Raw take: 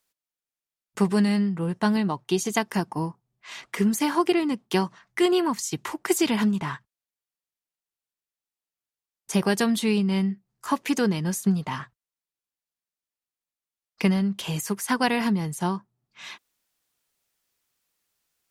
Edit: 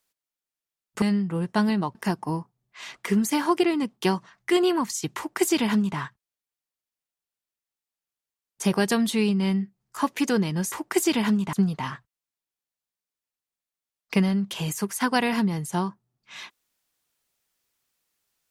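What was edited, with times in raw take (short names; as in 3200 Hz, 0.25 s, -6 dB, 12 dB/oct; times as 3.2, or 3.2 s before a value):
1.02–1.29 cut
2.22–2.64 cut
5.86–6.67 copy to 11.41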